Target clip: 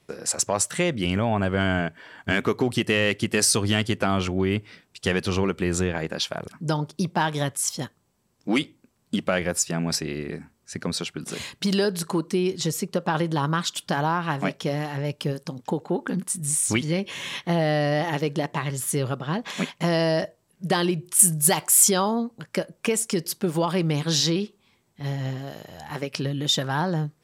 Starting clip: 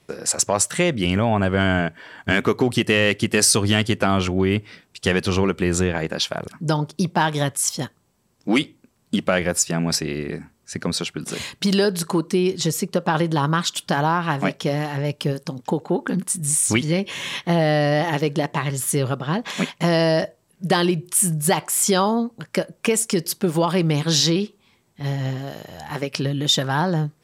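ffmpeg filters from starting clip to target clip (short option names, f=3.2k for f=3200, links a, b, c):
-filter_complex "[0:a]asettb=1/sr,asplit=3[a][b][c];[a]atrim=end=21.194[d];[b]atrim=start=21.19:end=21.89,asetpts=PTS-STARTPTS,afade=t=in:d=0.004:c=qsin,afade=t=out:st=0.696:d=0.004:c=qsin,highshelf=f=4.8k:g=10.5[e];[c]atrim=start=21.886[f];[d][e]acrossfade=d=0.004:c1=hsin:c2=qsin[g];[g][f]acrossfade=d=0.004:c1=qsin:c2=hsin,volume=-4dB"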